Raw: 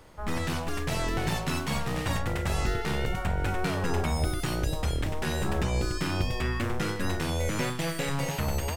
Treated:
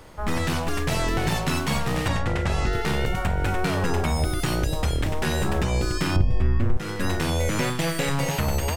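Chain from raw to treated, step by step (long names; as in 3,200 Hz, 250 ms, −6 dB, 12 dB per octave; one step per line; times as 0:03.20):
0:06.16–0:06.77: spectral tilt −3.5 dB per octave
downward compressor 3 to 1, threshold −26 dBFS, peak gain reduction 13 dB
0:02.08–0:02.73: high-frequency loss of the air 55 metres
level +6.5 dB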